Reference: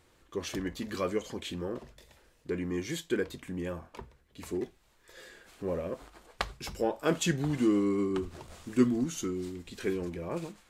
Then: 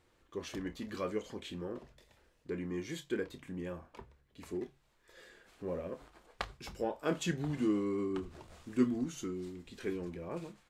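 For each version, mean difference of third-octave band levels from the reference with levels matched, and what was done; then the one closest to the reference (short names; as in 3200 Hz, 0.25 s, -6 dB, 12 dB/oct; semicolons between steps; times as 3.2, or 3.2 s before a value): 1.5 dB: high shelf 5700 Hz -6 dB; doubler 28 ms -12.5 dB; de-hum 69.51 Hz, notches 2; gain -5.5 dB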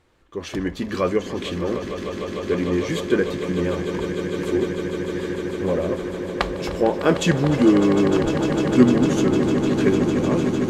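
7.0 dB: LPF 3200 Hz 6 dB/oct; AGC gain up to 8 dB; on a send: swelling echo 0.151 s, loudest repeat 8, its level -12 dB; on the sum: gain +2.5 dB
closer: first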